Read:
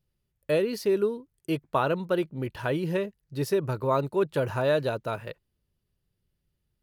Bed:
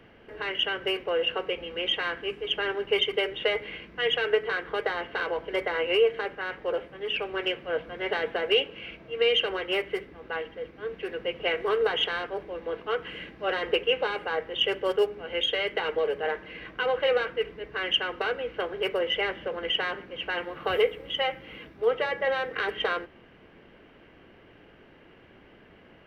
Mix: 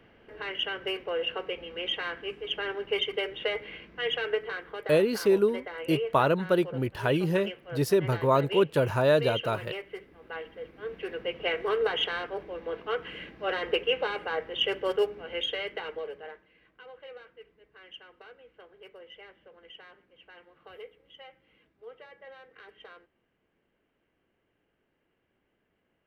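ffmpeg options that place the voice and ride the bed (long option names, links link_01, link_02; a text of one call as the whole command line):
ffmpeg -i stem1.wav -i stem2.wav -filter_complex "[0:a]adelay=4400,volume=2dB[link_01];[1:a]volume=4.5dB,afade=type=out:start_time=4.23:duration=0.65:silence=0.473151,afade=type=in:start_time=9.9:duration=1.13:silence=0.375837,afade=type=out:start_time=15.06:duration=1.43:silence=0.1[link_02];[link_01][link_02]amix=inputs=2:normalize=0" out.wav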